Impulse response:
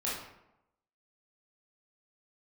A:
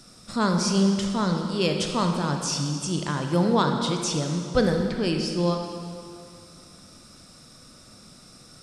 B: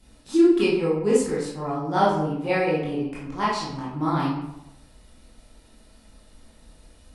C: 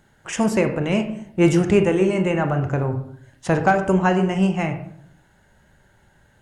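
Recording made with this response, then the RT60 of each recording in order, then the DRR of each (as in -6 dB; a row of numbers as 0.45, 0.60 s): B; 2.4, 0.90, 0.65 s; 3.0, -7.5, 6.0 dB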